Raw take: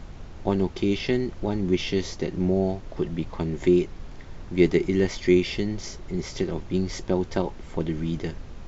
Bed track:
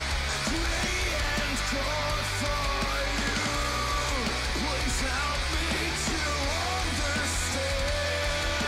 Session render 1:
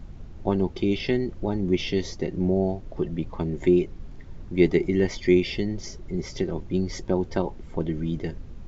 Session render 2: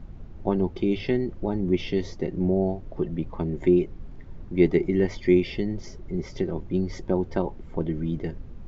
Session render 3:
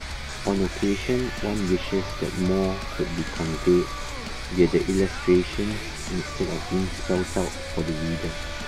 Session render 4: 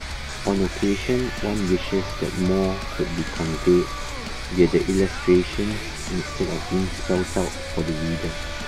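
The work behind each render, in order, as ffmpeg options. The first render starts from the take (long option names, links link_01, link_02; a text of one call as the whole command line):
ffmpeg -i in.wav -af "afftdn=noise_reduction=9:noise_floor=-41" out.wav
ffmpeg -i in.wav -af "highshelf=frequency=3600:gain=-11.5,bandreject=frequency=50:width_type=h:width=6,bandreject=frequency=100:width_type=h:width=6" out.wav
ffmpeg -i in.wav -i bed.wav -filter_complex "[1:a]volume=-5.5dB[link_01];[0:a][link_01]amix=inputs=2:normalize=0" out.wav
ffmpeg -i in.wav -af "volume=2dB" out.wav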